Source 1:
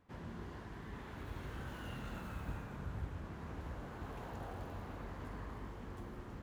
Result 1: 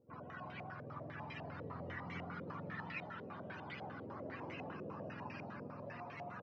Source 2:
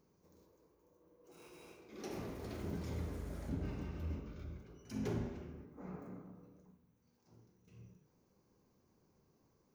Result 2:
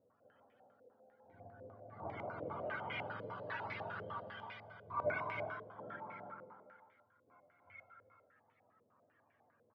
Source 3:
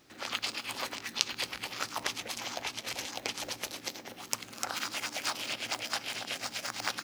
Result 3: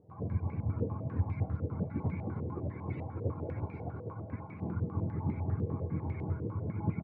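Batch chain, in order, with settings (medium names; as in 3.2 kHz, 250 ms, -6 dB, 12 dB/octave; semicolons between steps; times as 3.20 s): spectrum inverted on a logarithmic axis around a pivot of 500 Hz; multi-tap echo 184/313/340 ms -11/-5.5/-11.5 dB; step-sequenced low-pass 10 Hz 490–2200 Hz; trim -1 dB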